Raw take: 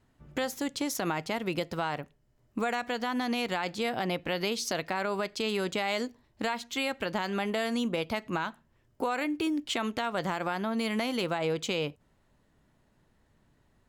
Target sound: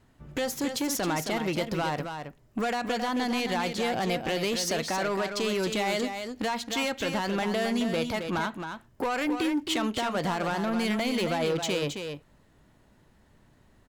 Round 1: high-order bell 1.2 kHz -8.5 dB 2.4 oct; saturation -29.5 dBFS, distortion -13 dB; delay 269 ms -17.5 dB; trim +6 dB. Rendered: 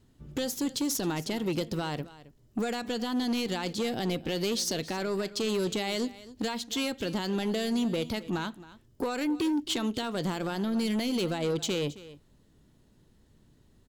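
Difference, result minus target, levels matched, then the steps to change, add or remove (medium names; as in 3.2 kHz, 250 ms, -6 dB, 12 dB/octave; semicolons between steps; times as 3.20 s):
echo-to-direct -10.5 dB; 1 kHz band -5.5 dB
change: delay 269 ms -7 dB; remove: high-order bell 1.2 kHz -8.5 dB 2.4 oct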